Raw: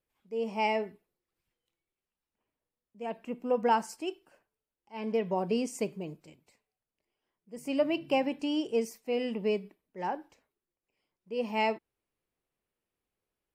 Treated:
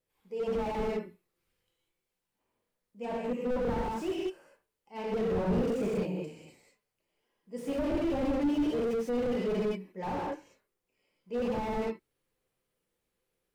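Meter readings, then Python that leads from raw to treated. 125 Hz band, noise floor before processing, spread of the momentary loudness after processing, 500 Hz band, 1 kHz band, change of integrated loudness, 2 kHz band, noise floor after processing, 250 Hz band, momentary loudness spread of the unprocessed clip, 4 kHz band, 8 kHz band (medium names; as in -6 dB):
+7.5 dB, under -85 dBFS, 11 LU, +0.5 dB, -5.0 dB, -0.5 dB, -5.0 dB, under -85 dBFS, +2.5 dB, 13 LU, -6.0 dB, no reading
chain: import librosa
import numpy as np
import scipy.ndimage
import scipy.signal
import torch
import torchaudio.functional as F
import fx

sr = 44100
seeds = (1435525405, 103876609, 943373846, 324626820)

y = fx.spec_quant(x, sr, step_db=15)
y = fx.rev_gated(y, sr, seeds[0], gate_ms=220, shape='flat', drr_db=-5.0)
y = fx.slew_limit(y, sr, full_power_hz=17.0)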